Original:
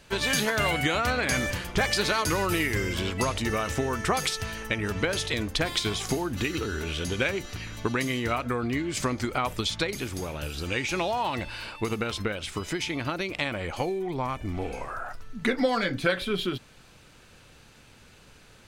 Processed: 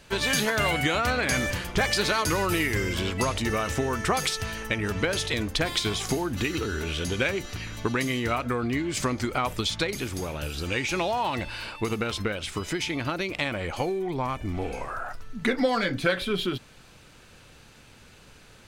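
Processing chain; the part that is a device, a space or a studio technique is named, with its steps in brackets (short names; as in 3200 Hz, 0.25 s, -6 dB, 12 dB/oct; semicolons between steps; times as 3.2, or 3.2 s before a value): parallel distortion (in parallel at -13.5 dB: hard clip -29.5 dBFS, distortion -6 dB)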